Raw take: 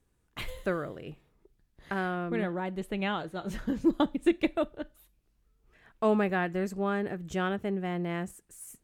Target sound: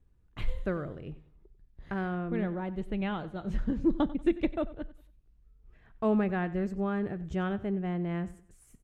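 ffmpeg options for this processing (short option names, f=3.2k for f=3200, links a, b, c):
-af "aemphasis=mode=reproduction:type=bsi,aecho=1:1:94|188|282:0.133|0.0427|0.0137,volume=-4.5dB"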